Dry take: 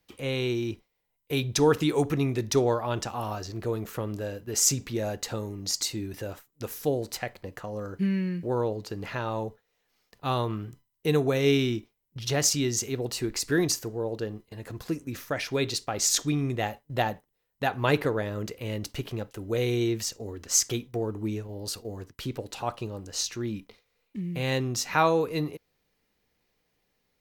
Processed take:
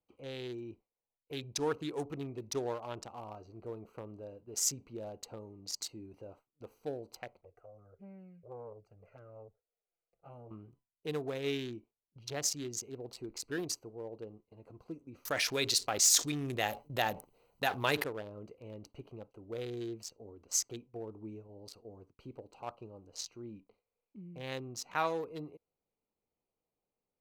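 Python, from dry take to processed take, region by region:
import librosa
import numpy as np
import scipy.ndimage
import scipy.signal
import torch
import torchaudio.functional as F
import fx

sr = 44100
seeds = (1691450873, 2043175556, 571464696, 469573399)

y = fx.chain(x, sr, fx.fixed_phaser(hz=980.0, stages=6),
    fx.env_flanger(rest_ms=6.5, full_db=-28.0),
    fx.transformer_sat(knee_hz=510.0), at=(7.41, 10.51))
y = fx.chain(y, sr, fx.high_shelf(hz=3200.0, db=9.5),
    fx.overload_stage(gain_db=10.5),
    fx.env_flatten(amount_pct=50), at=(15.25, 18.04))
y = fx.wiener(y, sr, points=25)
y = fx.low_shelf(y, sr, hz=320.0, db=-10.0)
y = y * librosa.db_to_amplitude(-8.0)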